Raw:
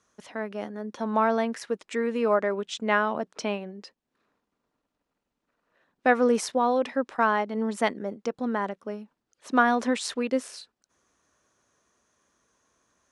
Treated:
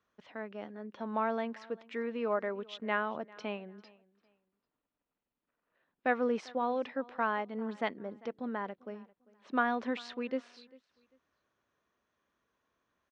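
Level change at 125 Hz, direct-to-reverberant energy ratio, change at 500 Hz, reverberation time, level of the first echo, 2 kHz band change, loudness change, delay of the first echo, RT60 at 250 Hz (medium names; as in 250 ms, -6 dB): no reading, no reverb, -9.0 dB, no reverb, -23.0 dB, -8.0 dB, -9.0 dB, 396 ms, no reverb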